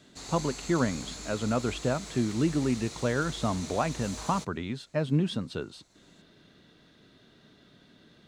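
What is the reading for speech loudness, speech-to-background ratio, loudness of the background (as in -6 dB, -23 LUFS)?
-30.5 LUFS, 10.0 dB, -40.5 LUFS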